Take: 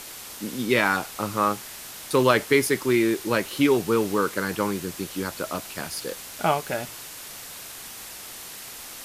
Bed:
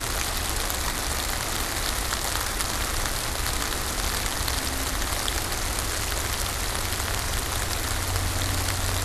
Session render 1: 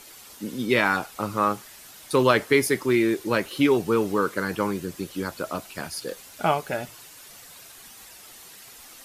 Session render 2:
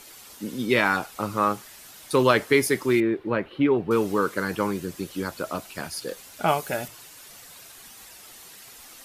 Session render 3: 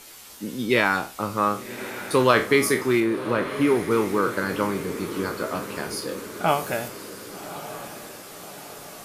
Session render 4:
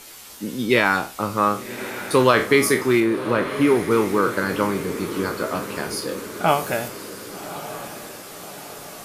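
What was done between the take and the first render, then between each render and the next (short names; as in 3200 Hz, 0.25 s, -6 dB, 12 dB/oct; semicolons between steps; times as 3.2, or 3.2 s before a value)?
denoiser 9 dB, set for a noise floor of -40 dBFS
3–3.91 air absorption 490 m; 6.48–6.88 high shelf 6500 Hz +9 dB
spectral trails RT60 0.32 s; diffused feedback echo 1.145 s, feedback 54%, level -12 dB
gain +3 dB; limiter -3 dBFS, peak gain reduction 2.5 dB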